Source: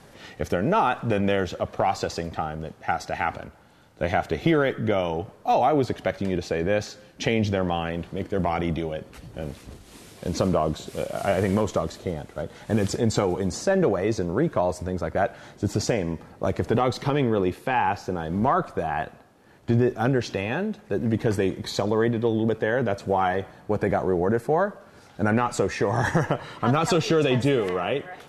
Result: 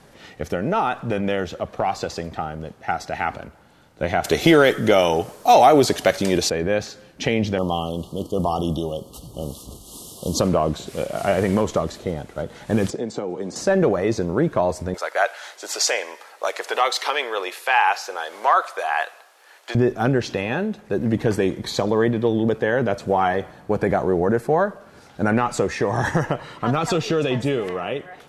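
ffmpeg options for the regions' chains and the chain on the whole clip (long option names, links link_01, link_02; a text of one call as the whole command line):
ffmpeg -i in.wav -filter_complex "[0:a]asettb=1/sr,asplit=3[link_01][link_02][link_03];[link_01]atrim=end=4.244[link_04];[link_02]atrim=start=4.24:end=6.5,asetpts=PTS-STARTPTS,afade=type=in:duration=0.004:curve=qsin,afade=type=out:start_time=2.256:duration=0.004:curve=qsin,bass=frequency=250:gain=-6,treble=frequency=4000:gain=13,acontrast=68[link_05];[link_03]atrim=start=6.496[link_06];[link_04][link_05]acrossfade=duration=0.004:curve1=hsin:curve2=qsin[link_07];[link_07][link_06]acrossfade=duration=0.004:curve1=qsin:curve2=hsin,asettb=1/sr,asplit=3[link_08][link_09][link_10];[link_08]atrim=end=7.584[link_11];[link_09]atrim=start=7.58:end=10.4,asetpts=PTS-STARTPTS,afade=type=in:duration=0.004:curve=qsin,afade=type=out:start_time=2.816:duration=0.004:curve=qsin,asuperstop=centerf=1900:order=20:qfactor=1.2,aemphasis=mode=production:type=50kf[link_12];[link_10]atrim=start=10.396[link_13];[link_11][link_12]acrossfade=duration=0.004:curve1=hsin:curve2=qsin[link_14];[link_14][link_13]acrossfade=duration=0.004:curve1=qsin:curve2=hsin,asettb=1/sr,asplit=3[link_15][link_16][link_17];[link_15]atrim=end=12.904[link_18];[link_16]atrim=start=12.9:end=13.56,asetpts=PTS-STARTPTS,afade=type=in:duration=0.004:curve=qsin,afade=type=out:start_time=0.656:duration=0.004:curve=qsin,highpass=220,lowpass=7900,acrossover=split=280|710[link_19][link_20][link_21];[link_19]acompressor=threshold=-35dB:ratio=4[link_22];[link_20]acompressor=threshold=-31dB:ratio=4[link_23];[link_21]acompressor=threshold=-44dB:ratio=4[link_24];[link_22][link_23][link_24]amix=inputs=3:normalize=0[link_25];[link_17]atrim=start=13.556[link_26];[link_18][link_25]acrossfade=duration=0.004:curve1=hsin:curve2=qsin[link_27];[link_27][link_26]acrossfade=duration=0.004:curve1=qsin:curve2=hsin,asettb=1/sr,asplit=3[link_28][link_29][link_30];[link_28]atrim=end=14.944[link_31];[link_29]atrim=start=14.94:end=19.75,asetpts=PTS-STARTPTS,afade=type=in:duration=0.004:curve=qsin,afade=type=out:start_time=4.806:duration=0.004:curve=qsin,highpass=frequency=450:width=0.5412,highpass=frequency=450:width=1.3066,tiltshelf=frequency=680:gain=-9[link_32];[link_30]atrim=start=19.746[link_33];[link_31][link_32]acrossfade=duration=0.004:curve1=hsin:curve2=qsin[link_34];[link_34][link_33]acrossfade=duration=0.004:curve1=qsin:curve2=hsin,equalizer=frequency=100:width_type=o:width=0.26:gain=-4.5,dynaudnorm=framelen=310:gausssize=17:maxgain=3.5dB" out.wav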